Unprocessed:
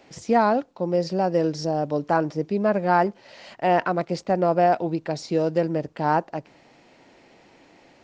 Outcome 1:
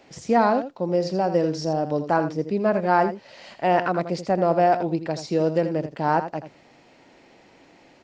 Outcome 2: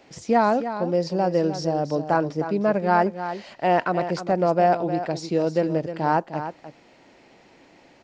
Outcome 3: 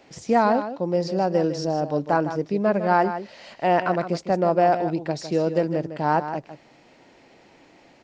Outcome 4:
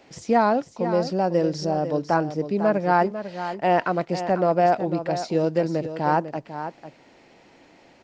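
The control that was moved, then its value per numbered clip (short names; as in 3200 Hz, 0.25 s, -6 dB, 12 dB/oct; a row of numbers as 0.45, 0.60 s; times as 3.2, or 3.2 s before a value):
echo, time: 82, 307, 156, 498 ms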